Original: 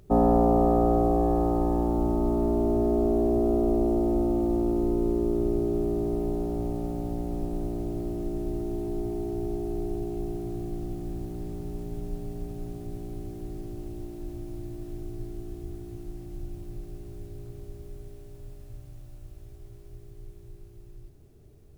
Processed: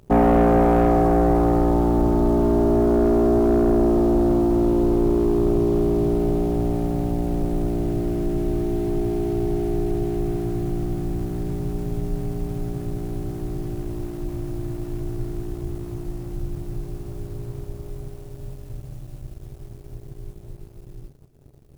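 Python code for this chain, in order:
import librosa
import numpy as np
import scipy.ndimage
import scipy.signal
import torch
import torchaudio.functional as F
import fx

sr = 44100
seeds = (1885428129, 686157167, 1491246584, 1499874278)

y = fx.peak_eq(x, sr, hz=140.0, db=10.0, octaves=0.27)
y = fx.leveller(y, sr, passes=2)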